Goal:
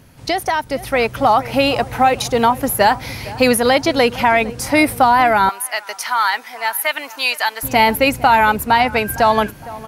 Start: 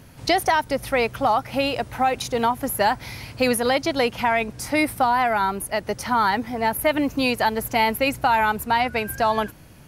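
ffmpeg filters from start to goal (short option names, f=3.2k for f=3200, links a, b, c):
-filter_complex "[0:a]asplit=2[a][b];[b]adelay=460,lowpass=f=1.7k:p=1,volume=-18dB,asplit=2[c][d];[d]adelay=460,lowpass=f=1.7k:p=1,volume=0.46,asplit=2[e][f];[f]adelay=460,lowpass=f=1.7k:p=1,volume=0.46,asplit=2[g][h];[h]adelay=460,lowpass=f=1.7k:p=1,volume=0.46[i];[a][c][e][g][i]amix=inputs=5:normalize=0,dynaudnorm=f=110:g=17:m=11.5dB,asettb=1/sr,asplit=3[j][k][l];[j]atrim=end=5.494[m];[k]atrim=start=5.49:end=7.63,asetpts=PTS-STARTPTS,afade=t=in:d=0.004:c=qsin,afade=t=out:st=2.136:d=0.004:c=qsin,highpass=1.2k[n];[l]atrim=start=7.626[o];[m][n]acrossfade=d=0.004:c1=hsin:c2=qsin[p];[p][o]acrossfade=d=0.004:c1=qsin:c2=hsin"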